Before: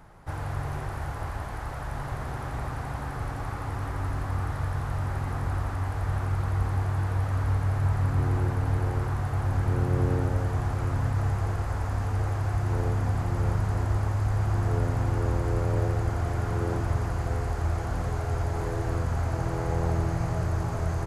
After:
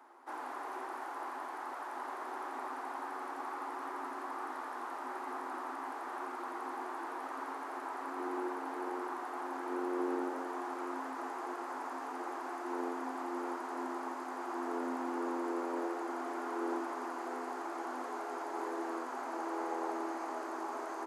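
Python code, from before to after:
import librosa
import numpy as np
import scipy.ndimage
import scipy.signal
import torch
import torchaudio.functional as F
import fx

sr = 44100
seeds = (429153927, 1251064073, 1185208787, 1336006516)

y = scipy.signal.sosfilt(scipy.signal.cheby1(6, 9, 250.0, 'highpass', fs=sr, output='sos'), x)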